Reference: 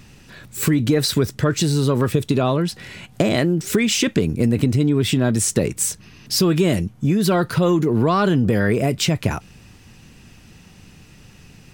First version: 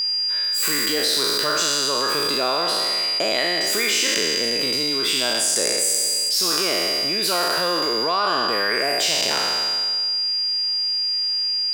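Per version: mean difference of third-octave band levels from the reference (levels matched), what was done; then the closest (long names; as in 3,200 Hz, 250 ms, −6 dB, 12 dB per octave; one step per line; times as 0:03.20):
13.5 dB: peak hold with a decay on every bin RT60 1.74 s
high-pass filter 650 Hz 12 dB per octave
steady tone 4,800 Hz −22 dBFS
envelope flattener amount 70%
level −4.5 dB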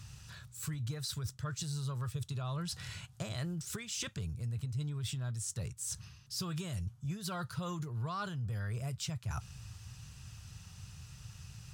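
7.0 dB: drawn EQ curve 120 Hz 0 dB, 270 Hz −26 dB, 1,300 Hz −6 dB, 2,100 Hz −14 dB, 3,200 Hz −7 dB, 6,900 Hz 0 dB
reversed playback
downward compressor 6 to 1, threshold −37 dBFS, peak gain reduction 18.5 dB
reversed playback
high-pass filter 58 Hz
high-shelf EQ 11,000 Hz −11 dB
level +1 dB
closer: second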